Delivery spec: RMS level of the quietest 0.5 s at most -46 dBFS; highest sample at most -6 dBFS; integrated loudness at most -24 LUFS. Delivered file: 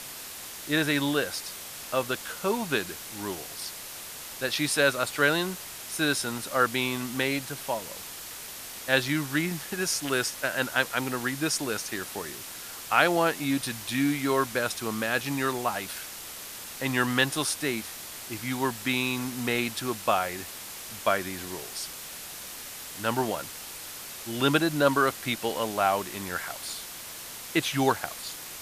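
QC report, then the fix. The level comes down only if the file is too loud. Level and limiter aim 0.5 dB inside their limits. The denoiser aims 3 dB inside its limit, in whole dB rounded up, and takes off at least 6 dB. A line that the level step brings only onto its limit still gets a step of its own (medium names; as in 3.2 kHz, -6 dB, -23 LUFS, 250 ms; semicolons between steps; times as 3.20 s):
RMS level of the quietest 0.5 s -41 dBFS: fail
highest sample -5.5 dBFS: fail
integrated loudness -28.5 LUFS: pass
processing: noise reduction 8 dB, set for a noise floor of -41 dBFS; peak limiter -6.5 dBFS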